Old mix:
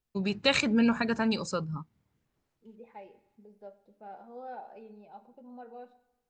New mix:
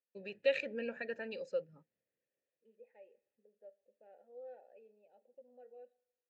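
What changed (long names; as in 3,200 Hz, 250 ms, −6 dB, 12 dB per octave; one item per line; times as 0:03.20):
second voice: send −8.0 dB
master: add formant filter e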